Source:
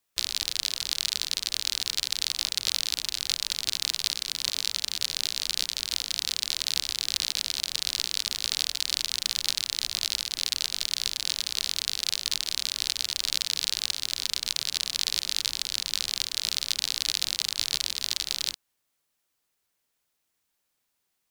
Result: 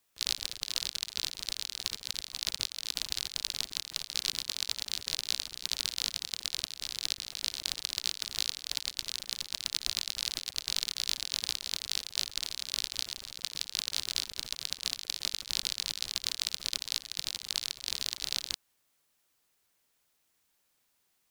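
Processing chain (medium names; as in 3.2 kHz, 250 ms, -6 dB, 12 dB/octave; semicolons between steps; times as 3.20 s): compressor with a negative ratio -35 dBFS, ratio -0.5; trim -1.5 dB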